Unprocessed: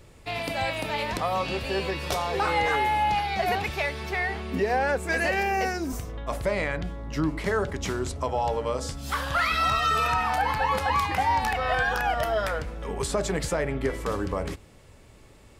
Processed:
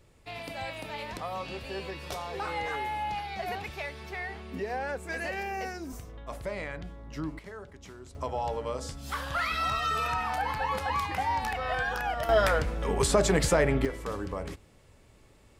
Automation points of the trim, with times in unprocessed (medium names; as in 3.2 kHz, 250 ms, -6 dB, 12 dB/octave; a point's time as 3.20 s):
-9 dB
from 7.39 s -18 dB
from 8.15 s -5.5 dB
from 12.29 s +3.5 dB
from 13.85 s -6 dB